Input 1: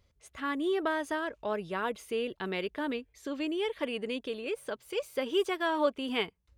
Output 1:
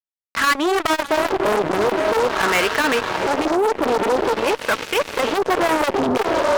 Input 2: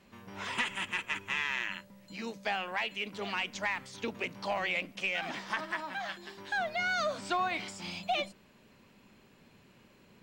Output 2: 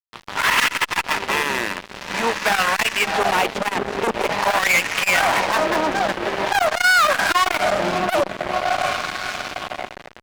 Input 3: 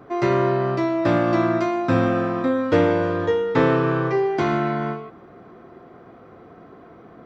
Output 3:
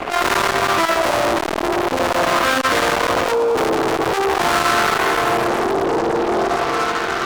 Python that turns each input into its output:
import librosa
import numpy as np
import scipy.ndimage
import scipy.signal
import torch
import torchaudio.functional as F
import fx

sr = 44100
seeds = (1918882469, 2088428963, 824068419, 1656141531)

y = fx.echo_diffused(x, sr, ms=682, feedback_pct=62, wet_db=-11.5)
y = fx.filter_lfo_bandpass(y, sr, shape='sine', hz=0.46, low_hz=390.0, high_hz=1500.0, q=1.4)
y = fx.fuzz(y, sr, gain_db=46.0, gate_db=-52.0)
y = fx.transformer_sat(y, sr, knee_hz=670.0)
y = y * librosa.db_to_amplitude(1.5)